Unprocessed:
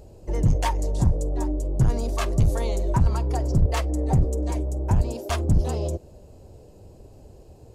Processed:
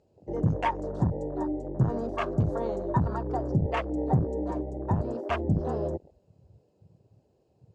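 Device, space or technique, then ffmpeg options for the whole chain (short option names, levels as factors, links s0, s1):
over-cleaned archive recording: -af "highpass=130,lowpass=5500,afwtdn=0.0158"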